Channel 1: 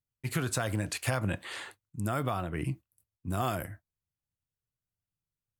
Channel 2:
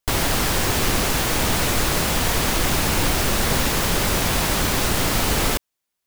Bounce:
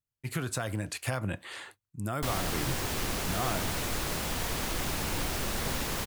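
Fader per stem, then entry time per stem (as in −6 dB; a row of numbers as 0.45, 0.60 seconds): −2.0, −12.0 decibels; 0.00, 2.15 seconds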